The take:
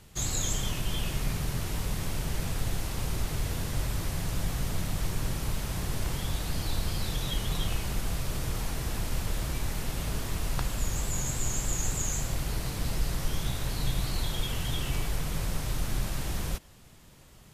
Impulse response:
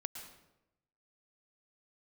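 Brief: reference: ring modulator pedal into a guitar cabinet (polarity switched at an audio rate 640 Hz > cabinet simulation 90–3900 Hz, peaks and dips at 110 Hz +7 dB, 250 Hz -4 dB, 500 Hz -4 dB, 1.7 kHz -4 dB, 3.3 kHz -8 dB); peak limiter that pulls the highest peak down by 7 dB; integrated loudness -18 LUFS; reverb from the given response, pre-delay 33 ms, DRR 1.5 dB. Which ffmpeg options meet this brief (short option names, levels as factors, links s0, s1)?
-filter_complex "[0:a]alimiter=limit=0.075:level=0:latency=1,asplit=2[s0][s1];[1:a]atrim=start_sample=2205,adelay=33[s2];[s1][s2]afir=irnorm=-1:irlink=0,volume=1[s3];[s0][s3]amix=inputs=2:normalize=0,aeval=exprs='val(0)*sgn(sin(2*PI*640*n/s))':c=same,highpass=90,equalizer=f=110:t=q:w=4:g=7,equalizer=f=250:t=q:w=4:g=-4,equalizer=f=500:t=q:w=4:g=-4,equalizer=f=1700:t=q:w=4:g=-4,equalizer=f=3300:t=q:w=4:g=-8,lowpass=f=3900:w=0.5412,lowpass=f=3900:w=1.3066,volume=4.22"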